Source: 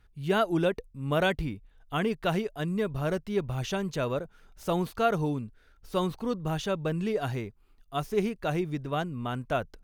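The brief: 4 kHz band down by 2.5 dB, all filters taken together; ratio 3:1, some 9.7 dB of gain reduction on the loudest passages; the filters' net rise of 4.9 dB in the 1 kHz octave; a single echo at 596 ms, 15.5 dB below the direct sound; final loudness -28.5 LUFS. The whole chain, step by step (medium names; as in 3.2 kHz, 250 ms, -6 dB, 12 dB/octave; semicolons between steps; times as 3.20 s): peaking EQ 1 kHz +7.5 dB; peaking EQ 4 kHz -4 dB; compression 3:1, threshold -31 dBFS; delay 596 ms -15.5 dB; trim +6.5 dB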